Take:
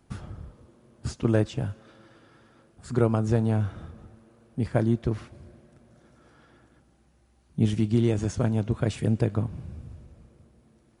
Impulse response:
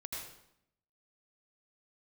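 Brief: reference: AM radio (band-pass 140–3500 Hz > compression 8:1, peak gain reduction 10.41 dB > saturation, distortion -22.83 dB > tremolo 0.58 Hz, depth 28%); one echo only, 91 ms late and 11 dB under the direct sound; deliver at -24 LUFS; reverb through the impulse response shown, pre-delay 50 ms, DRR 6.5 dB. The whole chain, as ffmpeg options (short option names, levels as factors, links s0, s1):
-filter_complex "[0:a]aecho=1:1:91:0.282,asplit=2[s0][s1];[1:a]atrim=start_sample=2205,adelay=50[s2];[s1][s2]afir=irnorm=-1:irlink=0,volume=0.501[s3];[s0][s3]amix=inputs=2:normalize=0,highpass=140,lowpass=3500,acompressor=threshold=0.0447:ratio=8,asoftclip=threshold=0.106,tremolo=f=0.58:d=0.28,volume=3.98"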